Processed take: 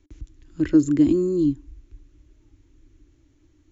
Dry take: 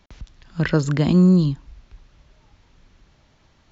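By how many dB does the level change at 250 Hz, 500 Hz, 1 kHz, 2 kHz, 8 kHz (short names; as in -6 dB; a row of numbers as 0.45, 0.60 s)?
-0.5 dB, 0.0 dB, under -15 dB, under -10 dB, n/a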